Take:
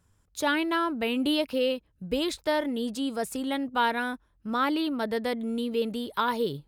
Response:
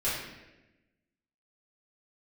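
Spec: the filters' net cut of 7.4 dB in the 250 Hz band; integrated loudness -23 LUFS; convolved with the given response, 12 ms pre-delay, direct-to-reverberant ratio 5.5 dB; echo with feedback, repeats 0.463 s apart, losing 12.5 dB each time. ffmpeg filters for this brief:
-filter_complex "[0:a]equalizer=f=250:t=o:g=-9,aecho=1:1:463|926|1389:0.237|0.0569|0.0137,asplit=2[a][b];[1:a]atrim=start_sample=2205,adelay=12[c];[b][c]afir=irnorm=-1:irlink=0,volume=-14.5dB[d];[a][d]amix=inputs=2:normalize=0,volume=6dB"

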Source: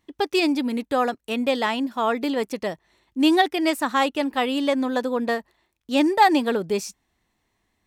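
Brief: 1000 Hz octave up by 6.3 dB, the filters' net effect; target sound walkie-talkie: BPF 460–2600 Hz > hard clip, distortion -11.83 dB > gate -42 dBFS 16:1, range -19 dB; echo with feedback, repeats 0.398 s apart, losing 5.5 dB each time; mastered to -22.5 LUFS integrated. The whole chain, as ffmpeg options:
-af "highpass=460,lowpass=2.6k,equalizer=f=1k:t=o:g=9,aecho=1:1:398|796|1194|1592|1990|2388|2786:0.531|0.281|0.149|0.079|0.0419|0.0222|0.0118,asoftclip=type=hard:threshold=-10.5dB,agate=range=-19dB:threshold=-42dB:ratio=16,volume=-1dB"

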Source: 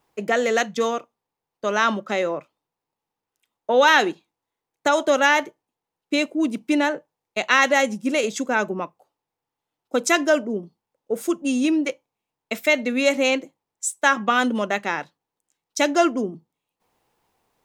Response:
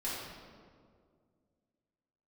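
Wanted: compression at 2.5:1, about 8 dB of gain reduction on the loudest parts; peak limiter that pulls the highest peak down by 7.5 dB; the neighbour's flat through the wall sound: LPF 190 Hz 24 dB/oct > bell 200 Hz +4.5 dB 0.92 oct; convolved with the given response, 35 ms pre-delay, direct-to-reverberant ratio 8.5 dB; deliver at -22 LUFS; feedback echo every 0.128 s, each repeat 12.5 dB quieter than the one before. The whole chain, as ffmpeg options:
-filter_complex "[0:a]acompressor=threshold=-24dB:ratio=2.5,alimiter=limit=-16.5dB:level=0:latency=1,aecho=1:1:128|256|384:0.237|0.0569|0.0137,asplit=2[a][b];[1:a]atrim=start_sample=2205,adelay=35[c];[b][c]afir=irnorm=-1:irlink=0,volume=-12.5dB[d];[a][d]amix=inputs=2:normalize=0,lowpass=f=190:w=0.5412,lowpass=f=190:w=1.3066,equalizer=f=200:t=o:w=0.92:g=4.5,volume=18dB"

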